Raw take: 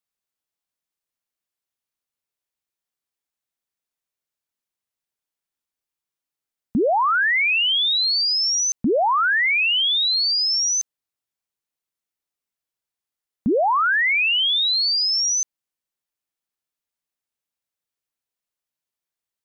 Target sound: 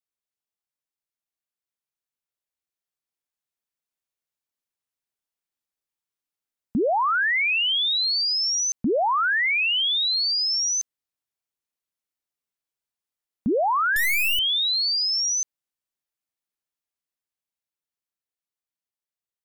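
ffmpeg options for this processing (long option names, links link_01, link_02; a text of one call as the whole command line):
ffmpeg -i in.wav -filter_complex "[0:a]dynaudnorm=framelen=430:gausssize=13:maxgain=4dB,asettb=1/sr,asplit=3[link_01][link_02][link_03];[link_01]atrim=end=13.964[link_04];[link_02]atrim=start=13.96:end=14.39,asetpts=PTS-STARTPTS,afade=type=in:duration=0.004:curve=qsin,afade=type=out:start_time=0.426:duration=0.004:curve=qsin,aeval=exprs='0.266*(cos(1*acos(clip(val(0)/0.266,-1,1)))-cos(1*PI/2))+0.0668*(cos(7*acos(clip(val(0)/0.266,-1,1)))-cos(7*PI/2))+0.0668*(cos(8*acos(clip(val(0)/0.266,-1,1)))-cos(8*PI/2))':channel_layout=same[link_05];[link_03]atrim=start=14.386[link_06];[link_04][link_05]acrossfade=duration=0.004:curve1=hsin:curve2=qsin[link_07];[link_07][link_06]acrossfade=duration=0.004:curve1=qsin:curve2=hsin,volume=-7dB" out.wav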